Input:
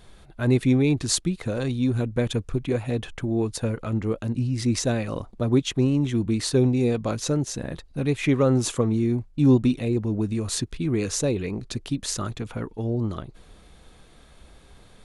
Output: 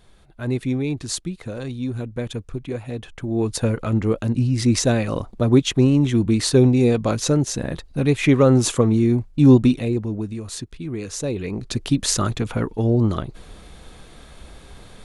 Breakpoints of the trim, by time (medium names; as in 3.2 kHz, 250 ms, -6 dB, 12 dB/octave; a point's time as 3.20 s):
3.11 s -3.5 dB
3.53 s +5.5 dB
9.64 s +5.5 dB
10.43 s -4.5 dB
11.07 s -4.5 dB
11.90 s +8 dB